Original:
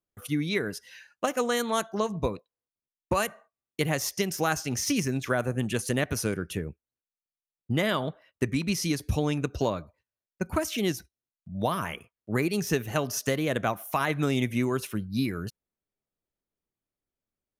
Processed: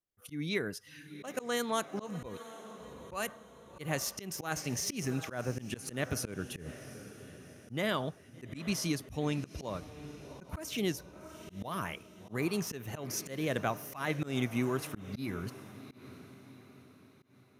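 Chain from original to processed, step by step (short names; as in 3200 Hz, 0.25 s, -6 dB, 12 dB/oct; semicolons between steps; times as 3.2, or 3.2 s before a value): diffused feedback echo 0.761 s, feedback 45%, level -15 dB; auto swell 0.148 s; gain -5 dB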